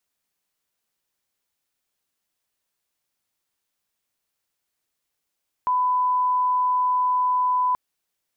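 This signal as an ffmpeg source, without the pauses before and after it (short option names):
-f lavfi -i "sine=f=1000:d=2.08:r=44100,volume=0.06dB"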